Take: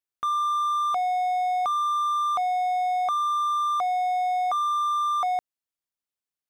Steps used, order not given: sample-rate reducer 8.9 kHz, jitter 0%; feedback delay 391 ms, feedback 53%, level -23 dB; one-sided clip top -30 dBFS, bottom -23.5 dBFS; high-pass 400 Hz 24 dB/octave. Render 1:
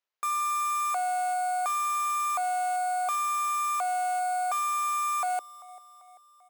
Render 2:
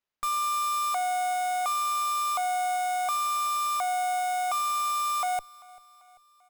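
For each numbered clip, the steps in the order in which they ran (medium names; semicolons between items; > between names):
feedback delay > one-sided clip > sample-rate reducer > high-pass; high-pass > one-sided clip > feedback delay > sample-rate reducer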